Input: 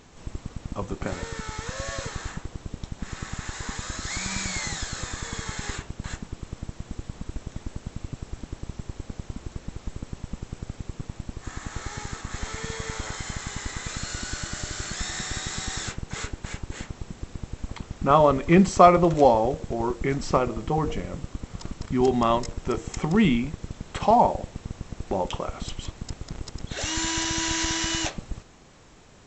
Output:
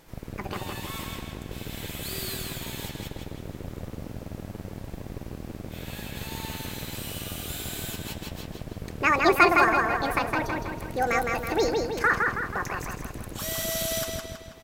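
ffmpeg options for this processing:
-filter_complex "[0:a]asplit=2[s0][s1];[s1]adelay=324,lowpass=f=3500:p=1,volume=0.708,asplit=2[s2][s3];[s3]adelay=324,lowpass=f=3500:p=1,volume=0.52,asplit=2[s4][s5];[s5]adelay=324,lowpass=f=3500:p=1,volume=0.52,asplit=2[s6][s7];[s7]adelay=324,lowpass=f=3500:p=1,volume=0.52,asplit=2[s8][s9];[s9]adelay=324,lowpass=f=3500:p=1,volume=0.52,asplit=2[s10][s11];[s11]adelay=324,lowpass=f=3500:p=1,volume=0.52,asplit=2[s12][s13];[s13]adelay=324,lowpass=f=3500:p=1,volume=0.52[s14];[s2][s4][s6][s8][s10][s12][s14]amix=inputs=7:normalize=0[s15];[s0][s15]amix=inputs=2:normalize=0,asetrate=88200,aresample=44100,volume=0.631"

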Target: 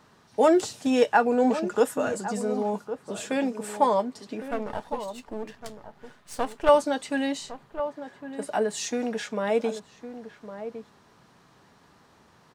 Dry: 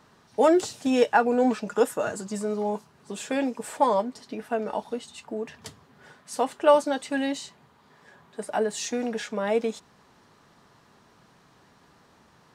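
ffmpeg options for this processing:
-filter_complex "[0:a]asettb=1/sr,asplit=3[s0][s1][s2];[s0]atrim=end=4.424[s3];[s1]atrim=start=4.42:end=6.69,asetpts=PTS-STARTPTS,afade=t=in:d=0.004:c=qsin,afade=t=out:st=2.266:d=0.004:c=qsin,aeval=exprs='if(lt(val(0),0),0.251*val(0),val(0))':c=same[s4];[s2]atrim=start=6.686[s5];[s3][s4]acrossfade=d=0.004:c1=hsin:c2=qsin[s6];[s6][s5]acrossfade=d=0.004:c1=qsin:c2=hsin,asplit=2[s7][s8];[s8]adelay=1108,volume=0.282,highshelf=f=4000:g=-24.9[s9];[s7][s9]amix=inputs=2:normalize=0"

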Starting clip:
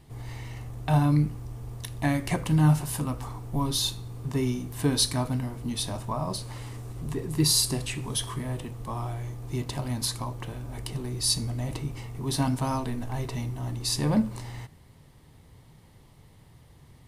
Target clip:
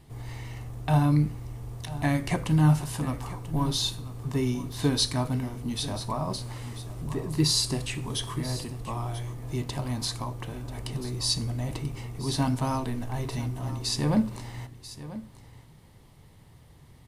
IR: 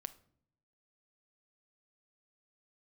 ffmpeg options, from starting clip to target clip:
-filter_complex "[0:a]asplit=2[s0][s1];[s1]aecho=0:1:988:0.178[s2];[s0][s2]amix=inputs=2:normalize=0,acrossover=split=8700[s3][s4];[s4]acompressor=threshold=0.00447:ratio=4:attack=1:release=60[s5];[s3][s5]amix=inputs=2:normalize=0"

